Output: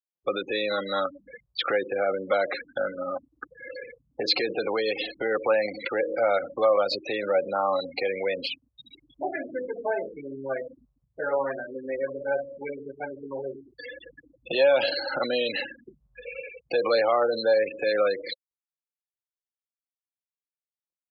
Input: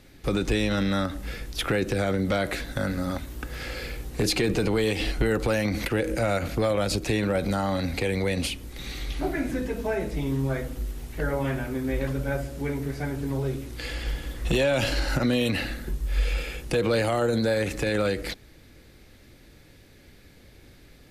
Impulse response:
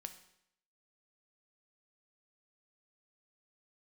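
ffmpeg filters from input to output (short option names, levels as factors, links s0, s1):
-af "afftfilt=real='re*gte(hypot(re,im),0.0501)':imag='im*gte(hypot(re,im),0.0501)':win_size=1024:overlap=0.75,highpass=490,equalizer=f=540:t=q:w=4:g=7,equalizer=f=770:t=q:w=4:g=3,equalizer=f=1100:t=q:w=4:g=10,equalizer=f=4200:t=q:w=4:g=9,lowpass=f=4600:w=0.5412,lowpass=f=4600:w=1.3066"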